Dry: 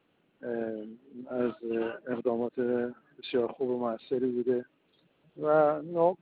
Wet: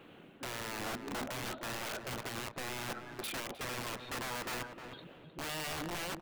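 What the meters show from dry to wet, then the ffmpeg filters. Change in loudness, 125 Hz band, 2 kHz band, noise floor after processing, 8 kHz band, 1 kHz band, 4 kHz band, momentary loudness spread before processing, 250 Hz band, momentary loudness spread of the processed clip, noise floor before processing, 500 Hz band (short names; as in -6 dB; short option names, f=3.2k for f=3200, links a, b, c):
-9.0 dB, -1.0 dB, +4.5 dB, -56 dBFS, n/a, -6.5 dB, +9.0 dB, 12 LU, -12.5 dB, 7 LU, -71 dBFS, -16.5 dB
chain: -filter_complex "[0:a]areverse,acompressor=threshold=-41dB:ratio=6,areverse,alimiter=level_in=18dB:limit=-24dB:level=0:latency=1:release=202,volume=-18dB,aeval=exprs='(mod(282*val(0)+1,2)-1)/282':c=same,asplit=2[a][b];[b]adelay=309,lowpass=f=1.7k:p=1,volume=-7dB,asplit=2[c][d];[d]adelay=309,lowpass=f=1.7k:p=1,volume=0.29,asplit=2[e][f];[f]adelay=309,lowpass=f=1.7k:p=1,volume=0.29,asplit=2[g][h];[h]adelay=309,lowpass=f=1.7k:p=1,volume=0.29[i];[a][c][e][g][i]amix=inputs=5:normalize=0,volume=15dB"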